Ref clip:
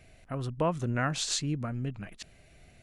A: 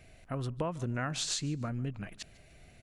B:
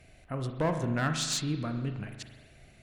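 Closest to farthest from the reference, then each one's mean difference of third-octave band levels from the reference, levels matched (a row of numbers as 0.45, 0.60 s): A, B; 3.0, 4.0 dB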